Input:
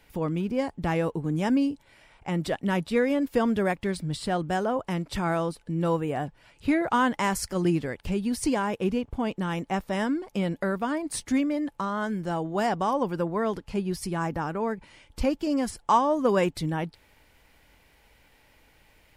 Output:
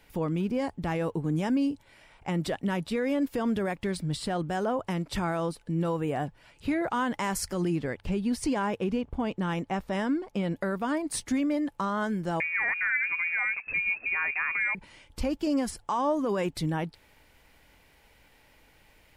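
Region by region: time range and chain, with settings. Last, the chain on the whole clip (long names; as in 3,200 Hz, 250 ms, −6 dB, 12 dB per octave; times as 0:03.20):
0:07.76–0:10.56: high-shelf EQ 8,200 Hz −8.5 dB + one half of a high-frequency compander decoder only
0:12.40–0:14.75: mu-law and A-law mismatch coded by mu + voice inversion scrambler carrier 2,600 Hz
whole clip: brickwall limiter −20 dBFS; mains-hum notches 50/100 Hz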